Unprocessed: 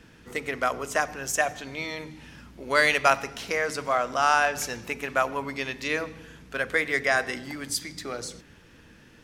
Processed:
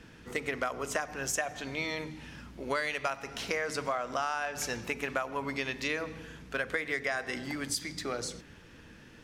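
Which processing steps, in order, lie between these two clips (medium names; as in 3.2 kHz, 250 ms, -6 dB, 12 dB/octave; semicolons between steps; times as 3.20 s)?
treble shelf 11 kHz -6 dB; compression 12:1, threshold -28 dBFS, peak gain reduction 15 dB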